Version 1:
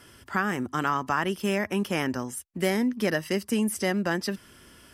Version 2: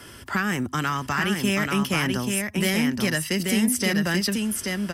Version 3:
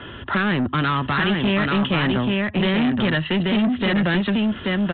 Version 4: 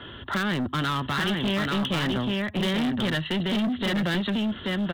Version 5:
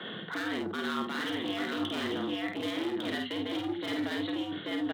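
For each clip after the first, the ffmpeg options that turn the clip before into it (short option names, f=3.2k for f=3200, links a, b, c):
-filter_complex "[0:a]acrossover=split=190|1800[a][b][c];[b]acompressor=threshold=-38dB:ratio=4[d];[a][d][c]amix=inputs=3:normalize=0,asoftclip=type=tanh:threshold=-20.5dB,aecho=1:1:834:0.631,volume=8.5dB"
-af "equalizer=f=2.2k:w=7.4:g=-9,aresample=8000,asoftclip=type=tanh:threshold=-25dB,aresample=44100,volume=9dB"
-af "bandreject=f=2.5k:w=20,aeval=exprs='clip(val(0),-1,0.126)':c=same,aexciter=amount=1.9:drive=7.7:freq=3.5k,volume=-5.5dB"
-af "areverse,acompressor=threshold=-33dB:ratio=10,areverse,afreqshift=97,aecho=1:1:50|75:0.668|0.178"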